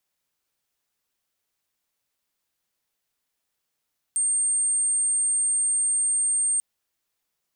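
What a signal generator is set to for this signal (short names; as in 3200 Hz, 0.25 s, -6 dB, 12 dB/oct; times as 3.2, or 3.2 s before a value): tone sine 8660 Hz -20 dBFS 2.44 s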